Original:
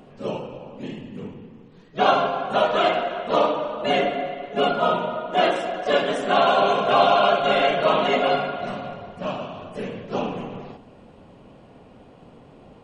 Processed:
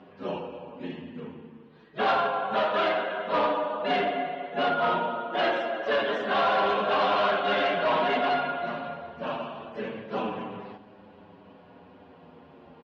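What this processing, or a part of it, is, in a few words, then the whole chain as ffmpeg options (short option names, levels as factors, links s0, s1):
barber-pole flanger into a guitar amplifier: -filter_complex "[0:a]asplit=2[s0][s1];[s1]adelay=7.8,afreqshift=-0.26[s2];[s0][s2]amix=inputs=2:normalize=1,asoftclip=type=tanh:threshold=0.0944,highpass=90,equalizer=f=130:t=q:w=4:g=-9,equalizer=f=950:t=q:w=4:g=4,equalizer=f=1600:t=q:w=4:g=6,lowpass=f=4500:w=0.5412,lowpass=f=4500:w=1.3066"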